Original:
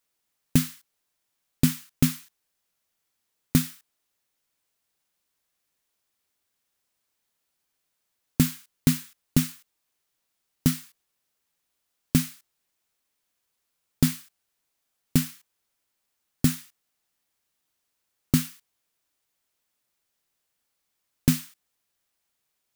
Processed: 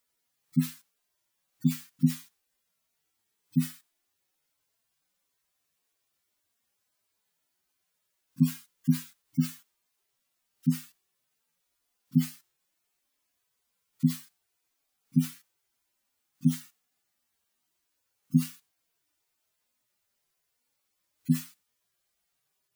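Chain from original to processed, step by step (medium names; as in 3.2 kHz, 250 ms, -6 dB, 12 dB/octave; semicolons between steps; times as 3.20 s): harmonic-percussive separation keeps harmonic; trim +3.5 dB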